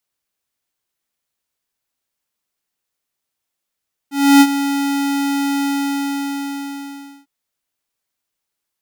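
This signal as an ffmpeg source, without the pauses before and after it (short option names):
-f lavfi -i "aevalsrc='0.473*(2*lt(mod(280*t,1),0.5)-1)':d=3.15:s=44100,afade=t=in:d=0.298,afade=t=out:st=0.298:d=0.054:silence=0.251,afade=t=out:st=1.53:d=1.62"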